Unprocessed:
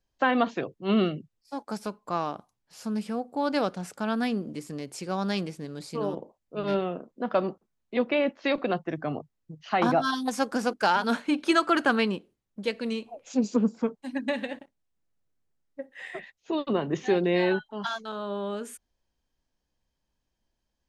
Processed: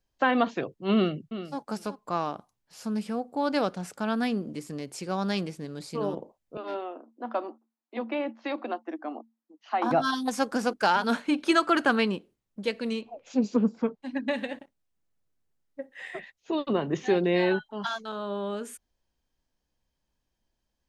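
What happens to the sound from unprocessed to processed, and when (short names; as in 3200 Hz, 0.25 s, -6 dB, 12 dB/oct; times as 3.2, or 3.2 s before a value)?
0.94–1.58 echo throw 0.37 s, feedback 15%, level -12 dB
6.57–9.91 rippled Chebyshev high-pass 220 Hz, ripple 9 dB
13.01–14.31 LPF 4800 Hz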